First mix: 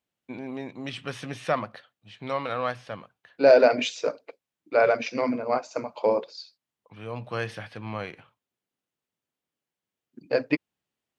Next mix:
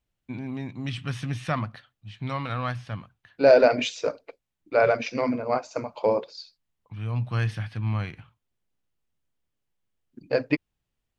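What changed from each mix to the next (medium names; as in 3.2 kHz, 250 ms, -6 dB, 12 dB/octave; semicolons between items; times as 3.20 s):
first voice: add graphic EQ 125/250/500 Hz +5/+3/-9 dB; master: remove high-pass 170 Hz 12 dB/octave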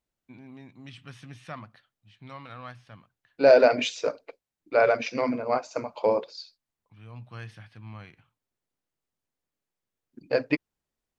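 first voice -11.0 dB; master: add bass shelf 120 Hz -10 dB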